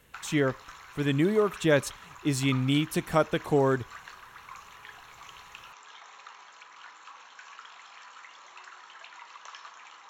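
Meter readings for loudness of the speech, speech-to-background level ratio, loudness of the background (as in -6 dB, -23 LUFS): -27.0 LUFS, 20.0 dB, -47.0 LUFS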